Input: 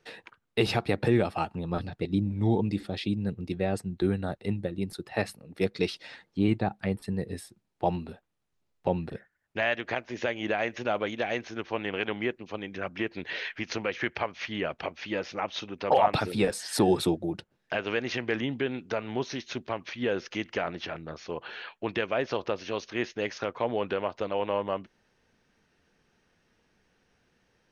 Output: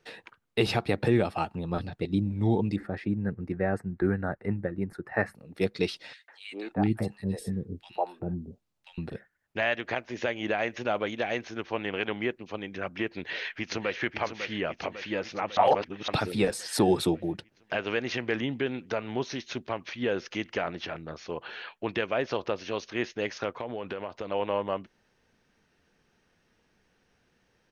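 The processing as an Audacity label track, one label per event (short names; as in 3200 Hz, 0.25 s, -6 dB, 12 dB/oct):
2.760000	5.350000	resonant high shelf 2400 Hz -12 dB, Q 3
6.130000	8.980000	three bands offset in time highs, mids, lows 0.15/0.39 s, splits 420/1800 Hz
13.160000	13.980000	echo throw 0.55 s, feedback 65%, level -9 dB
15.570000	16.080000	reverse
23.600000	24.310000	compressor, threshold -30 dBFS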